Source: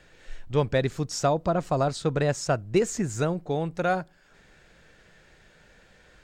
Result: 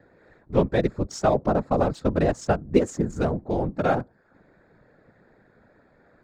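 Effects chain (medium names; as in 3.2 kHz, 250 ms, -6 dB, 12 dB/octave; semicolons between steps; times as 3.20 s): local Wiener filter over 15 samples; high-pass 150 Hz 12 dB/octave; tilt EQ -1.5 dB/octave; whisper effect; trim +1.5 dB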